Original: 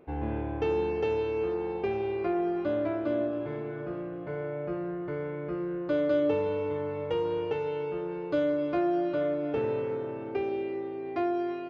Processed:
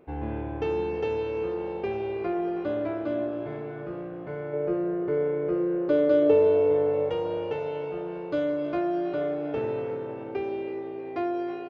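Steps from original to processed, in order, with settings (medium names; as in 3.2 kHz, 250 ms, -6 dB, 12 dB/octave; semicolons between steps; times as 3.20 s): 4.53–7.09 s: peaking EQ 430 Hz +10.5 dB 0.82 oct; frequency-shifting echo 319 ms, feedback 59%, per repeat +58 Hz, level -17.5 dB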